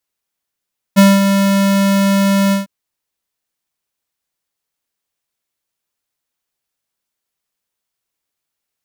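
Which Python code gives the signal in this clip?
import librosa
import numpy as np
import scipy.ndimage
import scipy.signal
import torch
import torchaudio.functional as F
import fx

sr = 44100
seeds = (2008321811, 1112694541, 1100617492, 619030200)

y = fx.adsr_tone(sr, wave='square', hz=197.0, attack_ms=26.0, decay_ms=212.0, sustain_db=-7.0, held_s=1.56, release_ms=143.0, level_db=-5.5)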